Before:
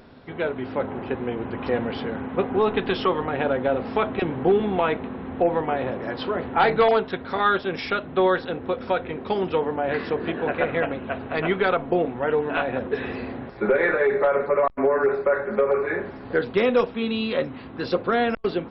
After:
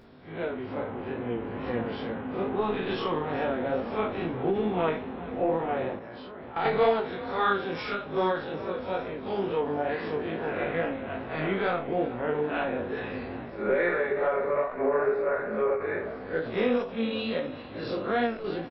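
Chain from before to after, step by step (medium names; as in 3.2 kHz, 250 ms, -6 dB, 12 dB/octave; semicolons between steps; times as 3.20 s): spectral blur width 88 ms; frequency-shifting echo 392 ms, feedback 64%, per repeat +37 Hz, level -16.5 dB; chorus 2.3 Hz, delay 17 ms, depth 3.9 ms; 5.99–6.65 s: level held to a coarse grid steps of 14 dB; endings held to a fixed fall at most 120 dB/s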